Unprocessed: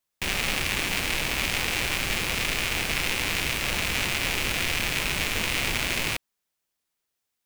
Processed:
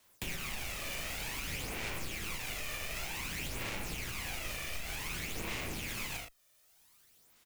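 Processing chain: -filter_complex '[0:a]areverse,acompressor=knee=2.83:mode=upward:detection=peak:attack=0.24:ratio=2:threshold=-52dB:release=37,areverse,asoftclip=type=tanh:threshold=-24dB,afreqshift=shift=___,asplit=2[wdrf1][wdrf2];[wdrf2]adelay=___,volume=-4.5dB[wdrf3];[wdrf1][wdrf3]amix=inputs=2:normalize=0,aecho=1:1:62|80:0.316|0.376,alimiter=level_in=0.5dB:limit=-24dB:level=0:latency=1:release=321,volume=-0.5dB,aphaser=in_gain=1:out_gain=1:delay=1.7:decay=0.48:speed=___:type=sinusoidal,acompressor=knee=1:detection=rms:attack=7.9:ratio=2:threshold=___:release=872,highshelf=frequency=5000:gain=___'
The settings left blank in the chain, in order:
-13, 37, 0.54, -39dB, 3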